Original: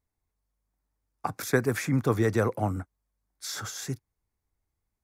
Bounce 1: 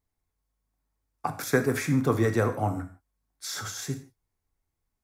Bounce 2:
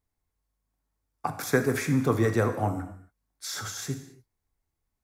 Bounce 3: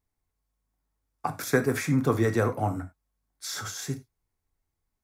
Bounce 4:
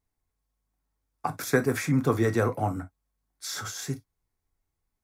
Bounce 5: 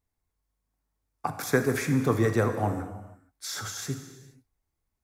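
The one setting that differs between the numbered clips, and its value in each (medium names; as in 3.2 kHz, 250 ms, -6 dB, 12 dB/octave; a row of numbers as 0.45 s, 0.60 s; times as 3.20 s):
gated-style reverb, gate: 190 ms, 300 ms, 120 ms, 80 ms, 500 ms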